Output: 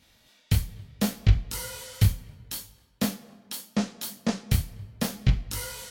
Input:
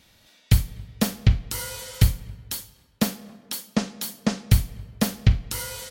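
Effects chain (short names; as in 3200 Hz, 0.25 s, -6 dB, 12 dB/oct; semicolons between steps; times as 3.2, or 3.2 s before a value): detuned doubles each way 25 cents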